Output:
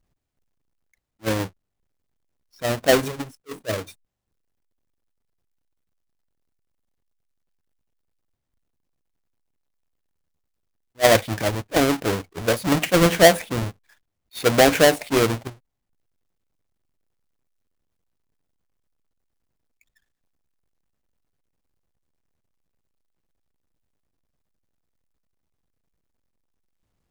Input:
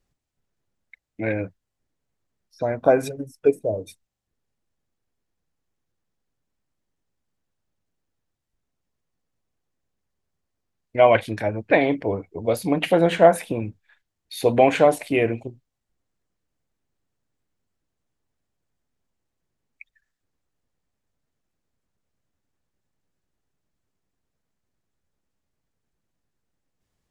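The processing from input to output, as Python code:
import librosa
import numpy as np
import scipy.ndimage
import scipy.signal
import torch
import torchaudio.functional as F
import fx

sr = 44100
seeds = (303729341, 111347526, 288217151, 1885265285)

y = fx.halfwave_hold(x, sr)
y = fx.attack_slew(y, sr, db_per_s=520.0)
y = y * librosa.db_to_amplitude(-2.5)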